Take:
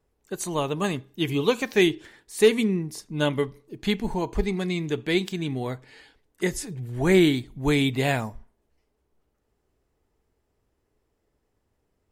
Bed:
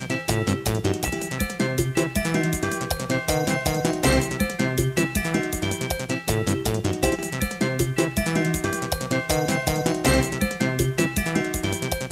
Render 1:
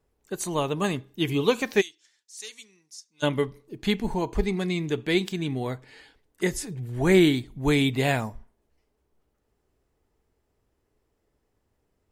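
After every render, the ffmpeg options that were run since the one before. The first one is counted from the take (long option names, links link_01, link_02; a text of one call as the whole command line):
ffmpeg -i in.wav -filter_complex "[0:a]asplit=3[link_01][link_02][link_03];[link_01]afade=type=out:start_time=1.8:duration=0.02[link_04];[link_02]bandpass=frequency=6100:width_type=q:width=2.8,afade=type=in:start_time=1.8:duration=0.02,afade=type=out:start_time=3.22:duration=0.02[link_05];[link_03]afade=type=in:start_time=3.22:duration=0.02[link_06];[link_04][link_05][link_06]amix=inputs=3:normalize=0" out.wav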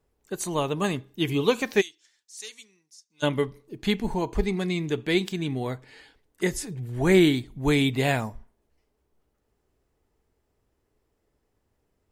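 ffmpeg -i in.wav -filter_complex "[0:a]asplit=2[link_01][link_02];[link_01]atrim=end=3.1,asetpts=PTS-STARTPTS,afade=type=out:start_time=2.47:duration=0.63:silence=0.281838[link_03];[link_02]atrim=start=3.1,asetpts=PTS-STARTPTS,afade=type=in:duration=0.004:curve=hsin:silence=0.281838[link_04];[link_03][link_04]concat=n=2:v=0:a=1" out.wav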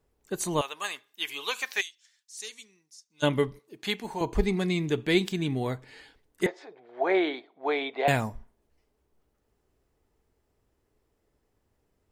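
ffmpeg -i in.wav -filter_complex "[0:a]asettb=1/sr,asplit=3[link_01][link_02][link_03];[link_01]atrim=end=0.614[link_04];[link_02]atrim=start=0.61:end=2.4,asetpts=PTS-STARTPTS,afade=type=in:duration=0.004:curve=qsin,afade=type=out:start_time=1.786:duration=0.004:curve=qsin,highpass=1200[link_05];[link_03]atrim=start=2.396[link_06];[link_04][link_05]acrossfade=duration=0.004:curve1=hsin:curve2=qsin[link_07];[link_07][link_06]acrossfade=duration=0.004:curve1=qsin:curve2=hsin,asettb=1/sr,asplit=3[link_08][link_09][link_10];[link_08]atrim=end=3.594[link_11];[link_09]atrim=start=3.59:end=4.21,asetpts=PTS-STARTPTS,afade=type=in:duration=0.004:curve=qsin,afade=type=out:start_time=0.616:duration=0.004:curve=qsin,highpass=frequency=740:poles=1[link_12];[link_10]atrim=start=4.206[link_13];[link_11][link_12]acrossfade=duration=0.004:curve1=hsin:curve2=qsin[link_14];[link_14][link_13]acrossfade=duration=0.004:curve1=qsin:curve2=hsin,asettb=1/sr,asplit=3[link_15][link_16][link_17];[link_15]atrim=end=6.464[link_18];[link_16]atrim=start=6.46:end=8.08,asetpts=PTS-STARTPTS,afade=type=in:duration=0.004:curve=qsin,afade=type=out:start_time=1.616:duration=0.004:curve=qsin,highpass=frequency=430:width=0.5412,highpass=frequency=430:width=1.3066,equalizer=frequency=700:width_type=q:width=4:gain=9,equalizer=frequency=1800:width_type=q:width=4:gain=-4,equalizer=frequency=2800:width_type=q:width=4:gain=-10,lowpass=frequency=3200:width=0.5412,lowpass=frequency=3200:width=1.3066[link_19];[link_17]atrim=start=8.076[link_20];[link_18][link_19]acrossfade=duration=0.004:curve1=hsin:curve2=qsin[link_21];[link_21][link_20]acrossfade=duration=0.004:curve1=qsin:curve2=hsin" out.wav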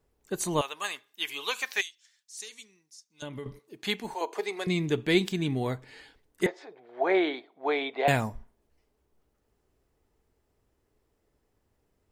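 ffmpeg -i in.wav -filter_complex "[0:a]asettb=1/sr,asplit=3[link_01][link_02][link_03];[link_01]atrim=end=2.424[link_04];[link_02]atrim=start=2.42:end=3.46,asetpts=PTS-STARTPTS,afade=type=in:duration=0.004:curve=qsin,afade=type=out:start_time=1.036:duration=0.004:curve=qsin,acompressor=threshold=-38dB:ratio=4:attack=3.2:release=140:knee=1:detection=peak[link_05];[link_03]atrim=start=3.456[link_06];[link_04][link_05]acrossfade=duration=0.004:curve1=hsin:curve2=qsin[link_07];[link_07][link_06]acrossfade=duration=0.004:curve1=qsin:curve2=hsin,asettb=1/sr,asplit=3[link_08][link_09][link_10];[link_08]atrim=end=4.144[link_11];[link_09]atrim=start=4.14:end=4.67,asetpts=PTS-STARTPTS,afade=type=in:duration=0.004:curve=qsin,afade=type=out:start_time=0.526:duration=0.004:curve=qsin,highpass=frequency=430:width=0.5412,highpass=frequency=430:width=1.3066[link_12];[link_10]atrim=start=4.666[link_13];[link_11][link_12]acrossfade=duration=0.004:curve1=hsin:curve2=qsin[link_14];[link_14][link_13]acrossfade=duration=0.004:curve1=qsin:curve2=hsin" out.wav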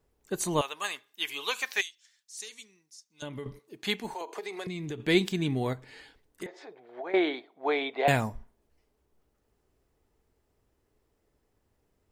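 ffmpeg -i in.wav -filter_complex "[0:a]asettb=1/sr,asplit=3[link_01][link_02][link_03];[link_01]atrim=end=4.124[link_04];[link_02]atrim=start=4.12:end=5,asetpts=PTS-STARTPTS,afade=type=in:duration=0.004:curve=qsin,afade=type=out:start_time=0.876:duration=0.004:curve=qsin,acompressor=threshold=-32dB:ratio=12:attack=3.2:release=140:knee=1:detection=peak[link_05];[link_03]atrim=start=4.996[link_06];[link_04][link_05]acrossfade=duration=0.004:curve1=hsin:curve2=qsin[link_07];[link_07][link_06]acrossfade=duration=0.004:curve1=qsin:curve2=hsin,asettb=1/sr,asplit=3[link_08][link_09][link_10];[link_08]atrim=end=5.734[link_11];[link_09]atrim=start=5.73:end=7.14,asetpts=PTS-STARTPTS,afade=type=in:duration=0.004:curve=qsin,afade=type=out:start_time=1.406:duration=0.004:curve=qsin,acompressor=threshold=-35dB:ratio=6:attack=3.2:release=140:knee=1:detection=peak[link_12];[link_10]atrim=start=7.136[link_13];[link_11][link_12]acrossfade=duration=0.004:curve1=hsin:curve2=qsin[link_14];[link_14][link_13]acrossfade=duration=0.004:curve1=qsin:curve2=hsin" out.wav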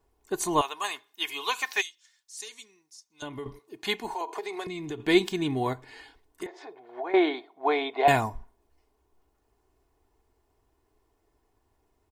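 ffmpeg -i in.wav -af "equalizer=frequency=920:width=3.4:gain=10,aecho=1:1:2.8:0.5" out.wav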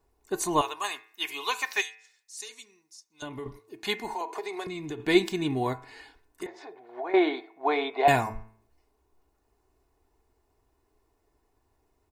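ffmpeg -i in.wav -af "bandreject=frequency=3200:width=17,bandreject=frequency=110.1:width_type=h:width=4,bandreject=frequency=220.2:width_type=h:width=4,bandreject=frequency=330.3:width_type=h:width=4,bandreject=frequency=440.4:width_type=h:width=4,bandreject=frequency=550.5:width_type=h:width=4,bandreject=frequency=660.6:width_type=h:width=4,bandreject=frequency=770.7:width_type=h:width=4,bandreject=frequency=880.8:width_type=h:width=4,bandreject=frequency=990.9:width_type=h:width=4,bandreject=frequency=1101:width_type=h:width=4,bandreject=frequency=1211.1:width_type=h:width=4,bandreject=frequency=1321.2:width_type=h:width=4,bandreject=frequency=1431.3:width_type=h:width=4,bandreject=frequency=1541.4:width_type=h:width=4,bandreject=frequency=1651.5:width_type=h:width=4,bandreject=frequency=1761.6:width_type=h:width=4,bandreject=frequency=1871.7:width_type=h:width=4,bandreject=frequency=1981.8:width_type=h:width=4,bandreject=frequency=2091.9:width_type=h:width=4,bandreject=frequency=2202:width_type=h:width=4,bandreject=frequency=2312.1:width_type=h:width=4,bandreject=frequency=2422.2:width_type=h:width=4,bandreject=frequency=2532.3:width_type=h:width=4,bandreject=frequency=2642.4:width_type=h:width=4,bandreject=frequency=2752.5:width_type=h:width=4" out.wav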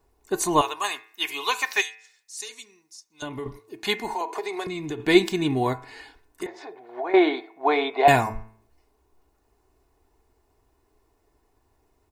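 ffmpeg -i in.wav -af "volume=4.5dB" out.wav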